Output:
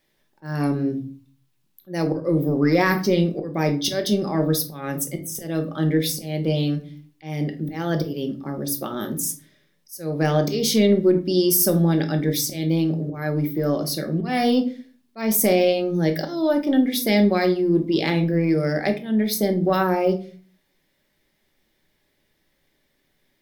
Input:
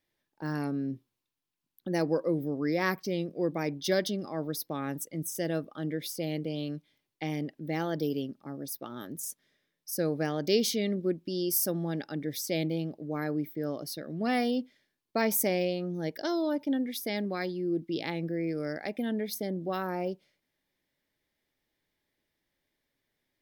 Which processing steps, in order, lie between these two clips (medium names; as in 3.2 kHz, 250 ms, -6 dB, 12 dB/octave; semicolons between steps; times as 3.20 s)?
slow attack 295 ms; in parallel at -8 dB: saturation -23 dBFS, distortion -19 dB; on the sum: reverberation RT60 0.40 s, pre-delay 5 ms, DRR 4.5 dB; loudness maximiser +15.5 dB; trim -7.5 dB